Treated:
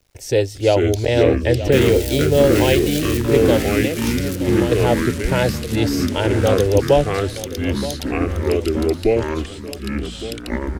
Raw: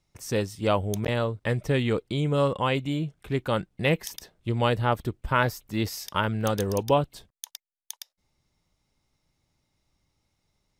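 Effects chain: 1.72–3.17 switching spikes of -20.5 dBFS; high shelf 5800 Hz -10.5 dB; in parallel at +2.5 dB: limiter -17 dBFS, peak gain reduction 7.5 dB; 3.7–4.72 on the sum: compressor, threshold -24 dBFS, peak gain reduction 11 dB; fixed phaser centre 480 Hz, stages 4; bit-crush 11-bit; on a send: feedback echo 0.923 s, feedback 50%, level -14 dB; on the sum: echoes that change speed 0.361 s, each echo -4 st, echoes 3; gain +5 dB

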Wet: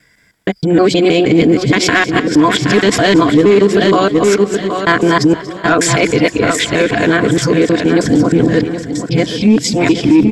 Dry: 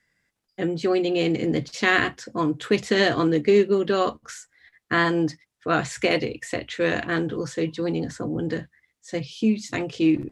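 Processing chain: local time reversal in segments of 0.157 s; dynamic EQ 270 Hz, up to +5 dB, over -36 dBFS, Q 4.3; in parallel at +3 dB: level quantiser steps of 19 dB; on the sum: ripple EQ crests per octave 1.7, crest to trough 6 dB; soft clip -4.5 dBFS, distortion -19 dB; on a send: feedback echo 0.772 s, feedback 21%, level -11 dB; on the sum: maximiser +15 dB; warbling echo 0.232 s, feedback 56%, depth 88 cents, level -17 dB; gain -1.5 dB

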